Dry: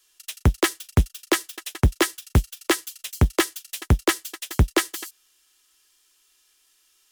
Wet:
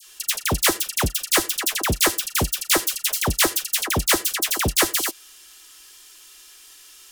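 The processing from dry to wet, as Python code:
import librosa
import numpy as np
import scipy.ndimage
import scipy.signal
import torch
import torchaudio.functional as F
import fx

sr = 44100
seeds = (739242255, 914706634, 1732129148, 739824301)

y = fx.dispersion(x, sr, late='lows', ms=65.0, hz=1400.0)
y = fx.spectral_comp(y, sr, ratio=2.0)
y = y * librosa.db_to_amplitude(5.5)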